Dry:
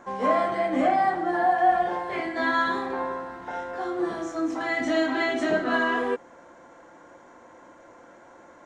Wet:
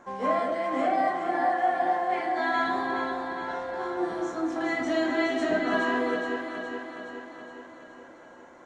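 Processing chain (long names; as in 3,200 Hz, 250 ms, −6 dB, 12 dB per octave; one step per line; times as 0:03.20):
0:00.39–0:02.56: high-pass filter 300 Hz 6 dB per octave
delay that swaps between a low-pass and a high-pass 209 ms, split 810 Hz, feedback 77%, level −3.5 dB
level −3.5 dB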